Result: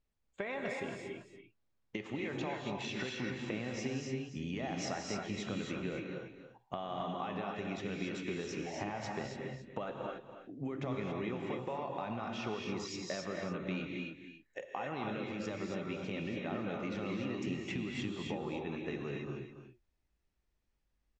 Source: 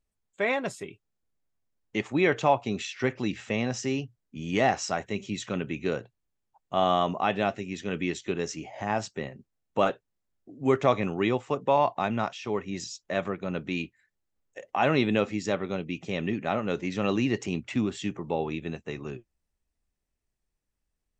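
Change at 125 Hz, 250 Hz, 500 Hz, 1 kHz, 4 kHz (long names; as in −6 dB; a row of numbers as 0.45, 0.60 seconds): −8.0, −8.5, −11.5, −13.0, −8.0 decibels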